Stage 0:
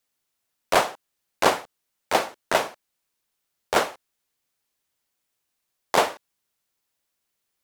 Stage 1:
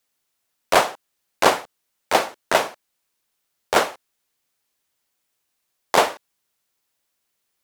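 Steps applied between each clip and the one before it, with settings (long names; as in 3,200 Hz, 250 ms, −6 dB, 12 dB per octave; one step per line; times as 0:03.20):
low-shelf EQ 200 Hz −3 dB
level +3.5 dB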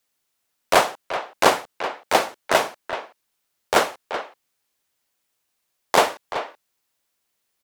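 far-end echo of a speakerphone 380 ms, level −9 dB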